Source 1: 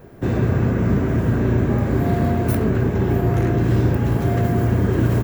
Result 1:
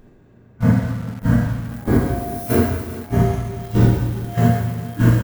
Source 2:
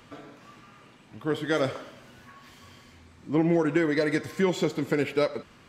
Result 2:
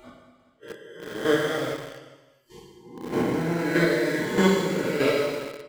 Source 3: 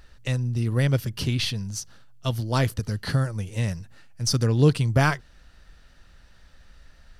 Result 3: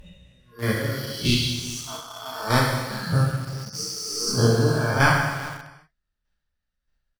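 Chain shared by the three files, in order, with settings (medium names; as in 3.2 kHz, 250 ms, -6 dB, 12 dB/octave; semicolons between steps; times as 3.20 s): reverse spectral sustain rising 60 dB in 2.24 s; square tremolo 1.6 Hz, depth 65%, duty 15%; spectral noise reduction 26 dB; on a send: delay 398 ms -15.5 dB; on the sum: gated-style reverb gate 390 ms falling, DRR -3 dB; in parallel at -8 dB: bit crusher 5-bit; on the sum: trim -4 dB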